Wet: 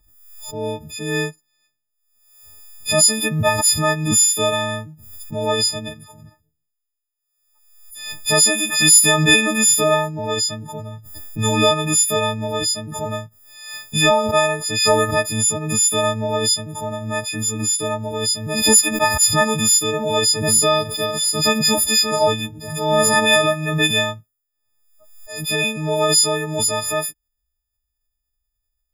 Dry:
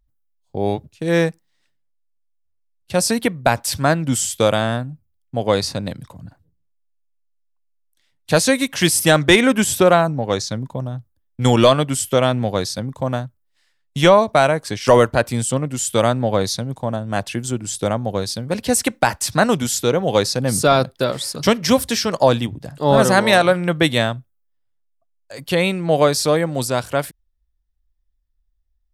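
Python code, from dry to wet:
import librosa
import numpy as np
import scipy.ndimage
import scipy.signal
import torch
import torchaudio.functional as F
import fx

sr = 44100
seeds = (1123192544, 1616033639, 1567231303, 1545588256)

y = fx.freq_snap(x, sr, grid_st=6)
y = fx.pre_swell(y, sr, db_per_s=58.0)
y = F.gain(torch.from_numpy(y), -6.5).numpy()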